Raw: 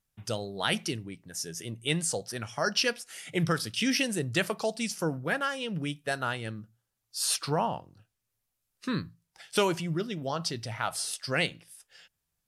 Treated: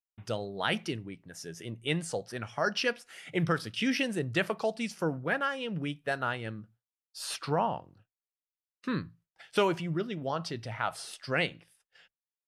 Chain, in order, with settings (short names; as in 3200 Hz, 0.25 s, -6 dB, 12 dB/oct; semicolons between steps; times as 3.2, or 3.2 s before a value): tone controls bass -2 dB, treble -12 dB; expander -54 dBFS